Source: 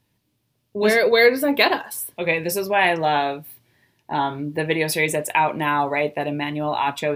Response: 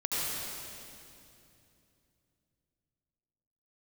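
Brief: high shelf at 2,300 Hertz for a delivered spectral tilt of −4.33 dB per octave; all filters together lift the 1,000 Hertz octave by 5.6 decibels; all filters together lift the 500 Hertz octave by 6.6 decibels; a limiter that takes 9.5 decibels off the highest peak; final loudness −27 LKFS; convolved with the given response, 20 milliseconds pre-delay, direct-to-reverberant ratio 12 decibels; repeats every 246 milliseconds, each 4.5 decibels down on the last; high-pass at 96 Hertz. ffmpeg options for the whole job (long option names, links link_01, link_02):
-filter_complex "[0:a]highpass=96,equalizer=frequency=500:width_type=o:gain=6.5,equalizer=frequency=1000:width_type=o:gain=4,highshelf=frequency=2300:gain=3.5,alimiter=limit=-7dB:level=0:latency=1,aecho=1:1:246|492|738|984|1230|1476|1722|1968|2214:0.596|0.357|0.214|0.129|0.0772|0.0463|0.0278|0.0167|0.01,asplit=2[link_01][link_02];[1:a]atrim=start_sample=2205,adelay=20[link_03];[link_02][link_03]afir=irnorm=-1:irlink=0,volume=-20dB[link_04];[link_01][link_04]amix=inputs=2:normalize=0,volume=-11dB"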